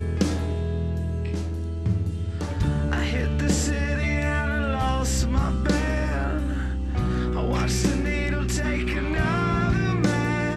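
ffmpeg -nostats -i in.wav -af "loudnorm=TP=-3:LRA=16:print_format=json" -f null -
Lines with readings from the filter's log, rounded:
"input_i" : "-24.8",
"input_tp" : "-8.8",
"input_lra" : "2.1",
"input_thresh" : "-34.8",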